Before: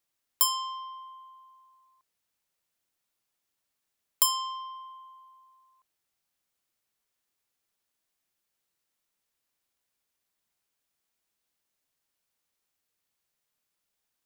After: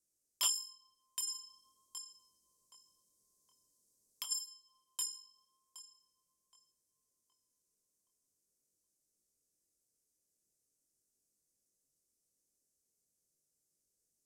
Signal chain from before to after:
inverse Chebyshev band-stop filter 1,300–2,600 Hz, stop band 70 dB
tape delay 770 ms, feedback 38%, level −4 dB, low-pass 3,100 Hz
chorus effect 0.44 Hz, delay 19.5 ms, depth 6.2 ms
high-shelf EQ 6,700 Hz +7 dB
convolution reverb RT60 0.65 s, pre-delay 116 ms, DRR 21.5 dB
hard clipping −30 dBFS, distortion −1 dB
low-pass filter 10,000 Hz 12 dB per octave
parametric band 3,000 Hz +10.5 dB 1.4 octaves
0:01.27–0:04.31: compressor whose output falls as the input rises −40 dBFS, ratio −0.5
tuned comb filter 700 Hz, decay 0.43 s, mix 30%
level +5.5 dB

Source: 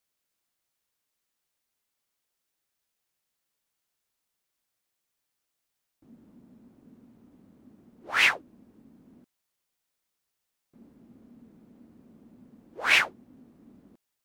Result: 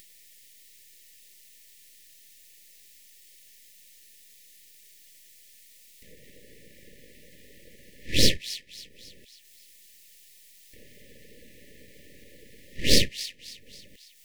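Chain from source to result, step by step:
Butterworth high-pass 180 Hz 48 dB per octave
low shelf with overshoot 370 Hz −6.5 dB, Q 3
in parallel at −2 dB: upward compression, threshold −38 dBFS
on the sum: full-wave rectification
linear-phase brick-wall band-stop 600–1,700 Hz
on a send: delay with a high-pass on its return 274 ms, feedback 36%, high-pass 2,100 Hz, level −13 dB
on the sum: one half of a high-frequency compander encoder only

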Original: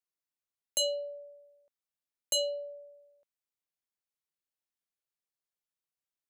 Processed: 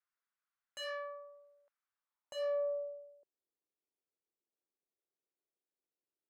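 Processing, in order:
tube saturation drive 39 dB, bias 0.5
band-pass filter sweep 1,400 Hz → 380 Hz, 0:01.86–0:03.25
level +12 dB

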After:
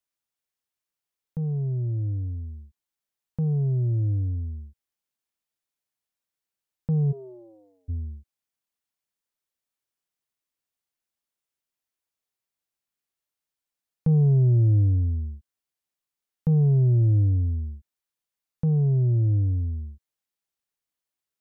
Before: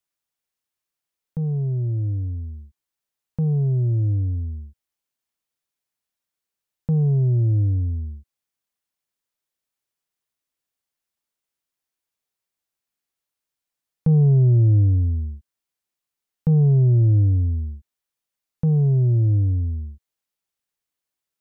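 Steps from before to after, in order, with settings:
0:07.11–0:07.88: high-pass filter 320 Hz → 720 Hz 24 dB per octave
level −3.5 dB

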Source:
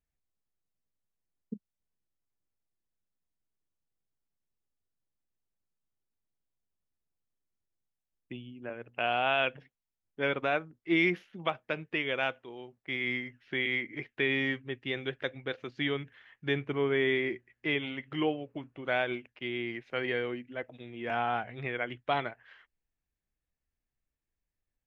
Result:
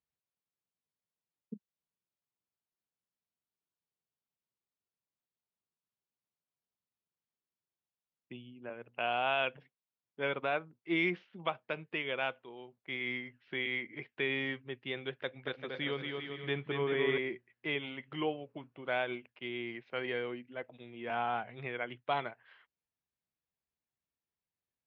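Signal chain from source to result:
loudspeaker in its box 120–4,800 Hz, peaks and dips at 290 Hz −4 dB, 980 Hz +3 dB, 1,800 Hz −3 dB
0:15.17–0:17.18: bouncing-ball delay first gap 230 ms, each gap 0.7×, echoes 5
level −3.5 dB

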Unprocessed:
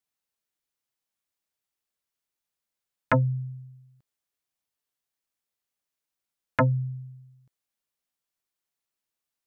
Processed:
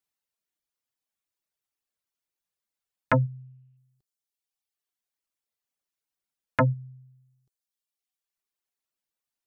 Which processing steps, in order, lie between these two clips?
reverb reduction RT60 1.3 s
0:03.19–0:03.77: low-pass with resonance 2,700 Hz, resonance Q 7

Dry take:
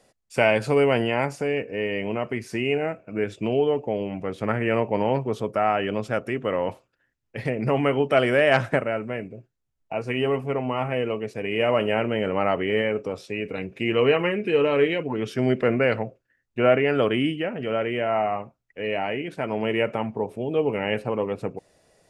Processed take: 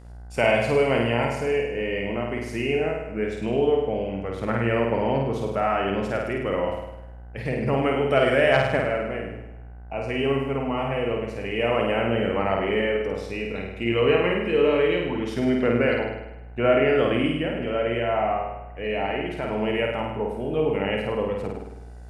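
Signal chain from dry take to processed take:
hum with harmonics 60 Hz, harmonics 34, −43 dBFS −7 dB per octave
flutter between parallel walls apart 8.8 metres, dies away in 0.92 s
level −2.5 dB

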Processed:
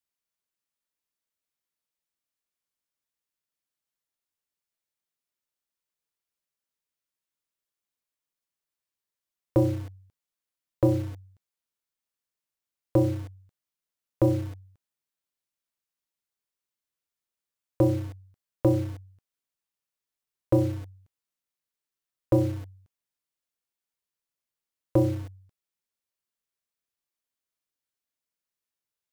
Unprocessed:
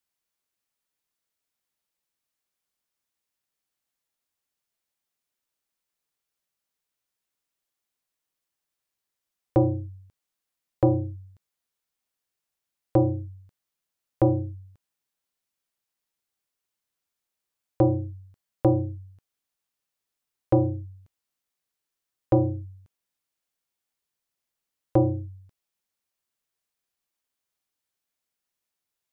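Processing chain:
in parallel at −4 dB: bit reduction 6 bits
on the sum: notch filter 770 Hz, Q 12
level −5.5 dB

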